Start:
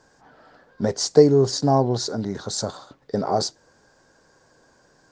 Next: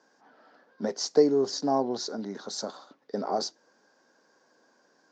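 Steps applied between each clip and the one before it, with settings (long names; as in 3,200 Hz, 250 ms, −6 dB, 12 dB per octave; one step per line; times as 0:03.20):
Chebyshev band-pass filter 220–6,100 Hz, order 3
level −6 dB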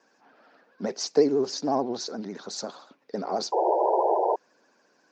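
sound drawn into the spectrogram noise, 0:03.52–0:04.36, 350–980 Hz −23 dBFS
parametric band 2,500 Hz +9.5 dB 0.3 octaves
pitch vibrato 14 Hz 98 cents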